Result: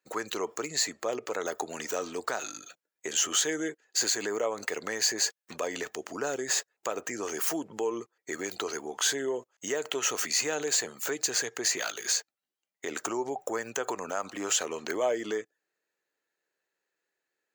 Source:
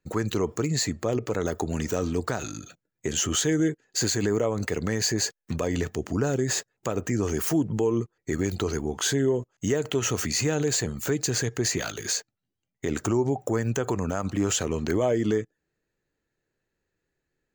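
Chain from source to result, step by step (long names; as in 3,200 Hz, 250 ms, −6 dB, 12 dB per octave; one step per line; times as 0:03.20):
high-pass filter 560 Hz 12 dB per octave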